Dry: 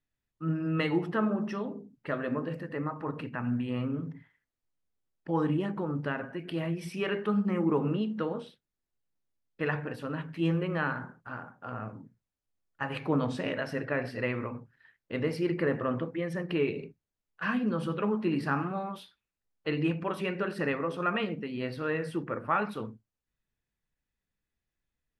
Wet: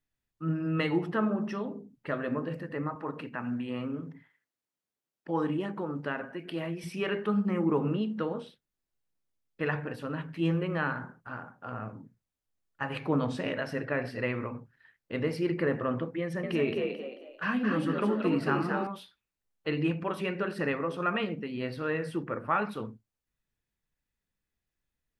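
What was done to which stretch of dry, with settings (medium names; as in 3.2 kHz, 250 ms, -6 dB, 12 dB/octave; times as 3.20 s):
2.95–6.84 s: Bessel high-pass 210 Hz
16.21–18.87 s: frequency-shifting echo 220 ms, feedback 34%, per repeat +60 Hz, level -4 dB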